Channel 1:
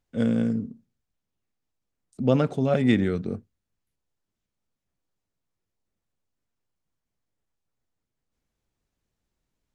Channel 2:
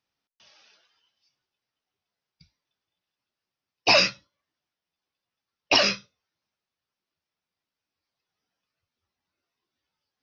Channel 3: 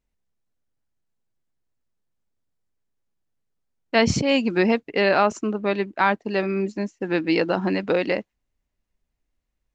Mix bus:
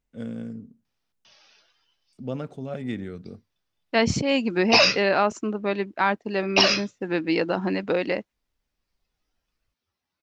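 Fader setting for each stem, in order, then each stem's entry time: −10.5, +1.0, −2.5 decibels; 0.00, 0.85, 0.00 seconds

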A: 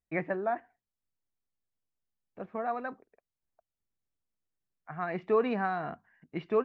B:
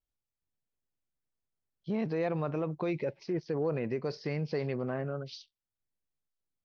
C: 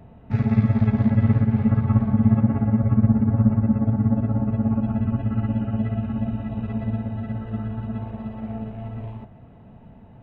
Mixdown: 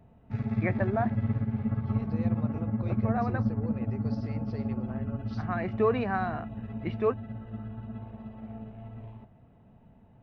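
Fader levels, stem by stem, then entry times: +1.0, −10.0, −10.5 decibels; 0.50, 0.00, 0.00 seconds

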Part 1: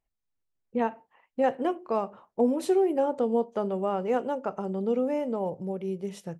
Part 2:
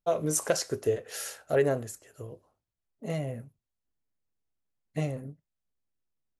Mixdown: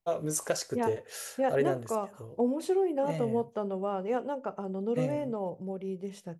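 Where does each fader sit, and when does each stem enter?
−4.0, −3.5 decibels; 0.00, 0.00 seconds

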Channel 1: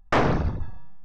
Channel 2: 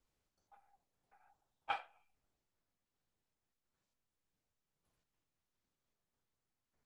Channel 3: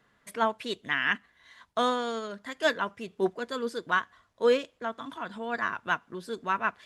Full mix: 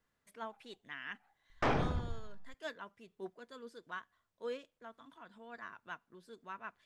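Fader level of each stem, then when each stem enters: −11.0, −2.5, −18.0 decibels; 1.50, 0.00, 0.00 seconds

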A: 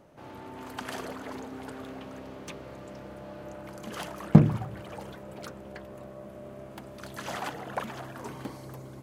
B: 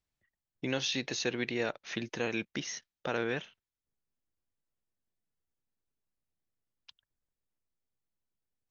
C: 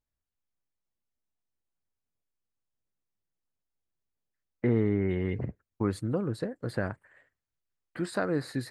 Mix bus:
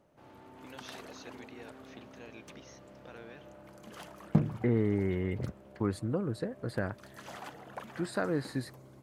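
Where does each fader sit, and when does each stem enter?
−10.0, −17.5, −2.5 decibels; 0.00, 0.00, 0.00 seconds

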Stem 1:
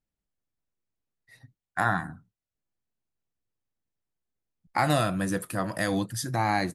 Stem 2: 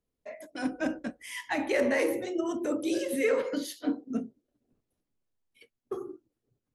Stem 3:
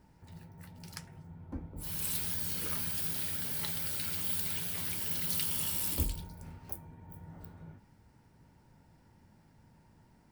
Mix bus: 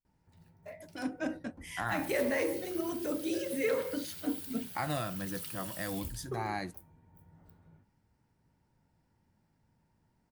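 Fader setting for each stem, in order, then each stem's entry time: −10.5, −4.5, −10.5 decibels; 0.00, 0.40, 0.05 seconds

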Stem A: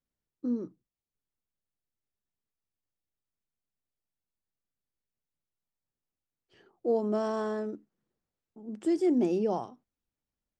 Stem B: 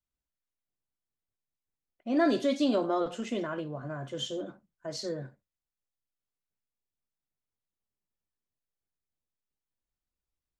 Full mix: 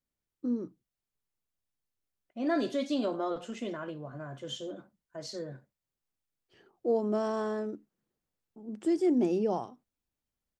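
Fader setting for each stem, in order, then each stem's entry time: −0.5, −4.0 decibels; 0.00, 0.30 seconds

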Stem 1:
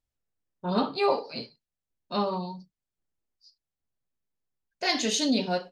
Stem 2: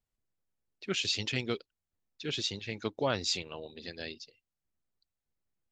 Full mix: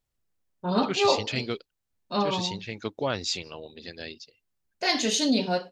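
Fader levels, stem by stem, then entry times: +1.5, +2.0 decibels; 0.00, 0.00 seconds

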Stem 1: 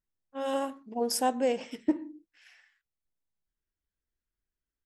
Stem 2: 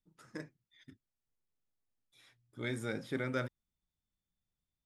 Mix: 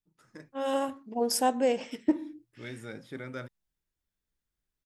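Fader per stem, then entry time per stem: +1.5, −4.0 decibels; 0.20, 0.00 seconds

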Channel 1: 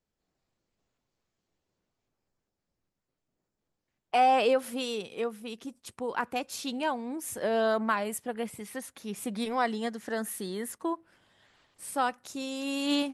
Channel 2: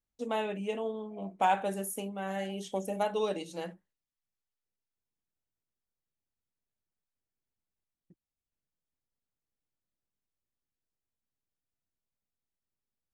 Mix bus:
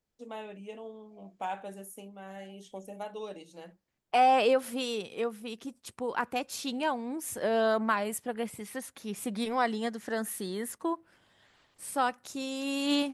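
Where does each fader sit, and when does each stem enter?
0.0, −9.0 decibels; 0.00, 0.00 seconds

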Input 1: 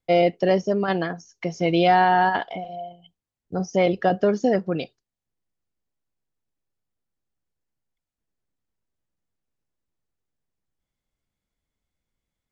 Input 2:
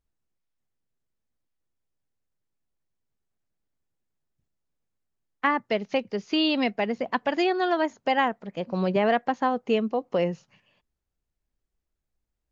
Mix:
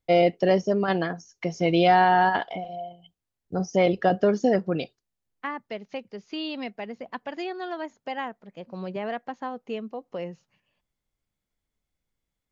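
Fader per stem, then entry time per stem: −1.0, −9.0 decibels; 0.00, 0.00 seconds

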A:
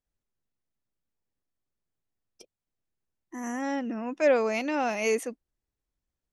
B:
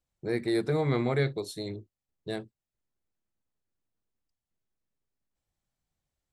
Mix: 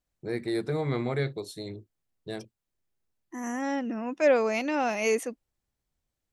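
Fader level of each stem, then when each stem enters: +0.5, −2.0 decibels; 0.00, 0.00 seconds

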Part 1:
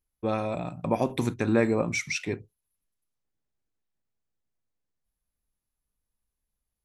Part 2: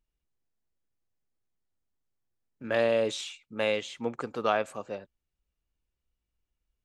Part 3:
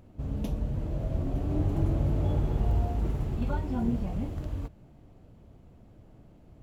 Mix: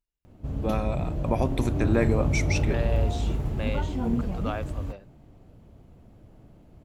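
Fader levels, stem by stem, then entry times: −1.0, −7.0, +2.0 decibels; 0.40, 0.00, 0.25 seconds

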